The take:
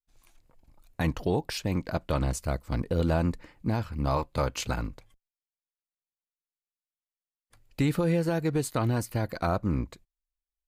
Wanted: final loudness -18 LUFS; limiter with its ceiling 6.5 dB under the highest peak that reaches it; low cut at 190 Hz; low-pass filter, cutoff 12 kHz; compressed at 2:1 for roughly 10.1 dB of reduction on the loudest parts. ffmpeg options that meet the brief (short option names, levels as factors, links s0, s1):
-af "highpass=190,lowpass=12000,acompressor=threshold=0.00794:ratio=2,volume=15.8,alimiter=limit=0.631:level=0:latency=1"